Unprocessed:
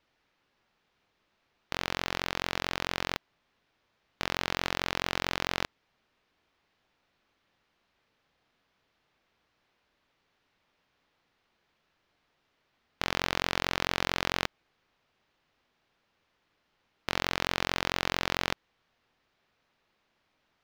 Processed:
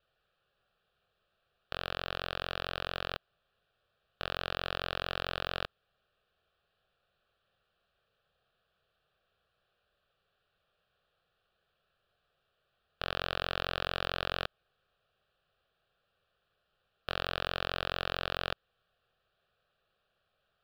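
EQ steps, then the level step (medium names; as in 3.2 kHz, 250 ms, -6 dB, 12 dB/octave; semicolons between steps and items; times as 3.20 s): treble shelf 4.8 kHz -7.5 dB; static phaser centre 1.4 kHz, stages 8; 0.0 dB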